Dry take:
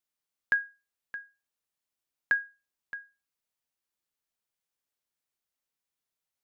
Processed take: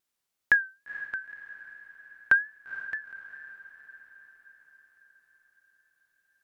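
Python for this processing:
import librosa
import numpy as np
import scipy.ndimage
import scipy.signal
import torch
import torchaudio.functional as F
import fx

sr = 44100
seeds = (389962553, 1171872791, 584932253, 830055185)

y = fx.wow_flutter(x, sr, seeds[0], rate_hz=2.1, depth_cents=100.0)
y = fx.echo_diffused(y, sr, ms=468, feedback_pct=57, wet_db=-14)
y = y * librosa.db_to_amplitude(5.5)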